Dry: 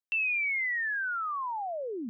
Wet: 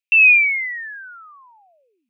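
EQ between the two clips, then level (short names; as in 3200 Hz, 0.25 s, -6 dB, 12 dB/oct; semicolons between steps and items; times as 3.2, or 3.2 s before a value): resonant high-pass 2500 Hz, resonance Q 9.2; 0.0 dB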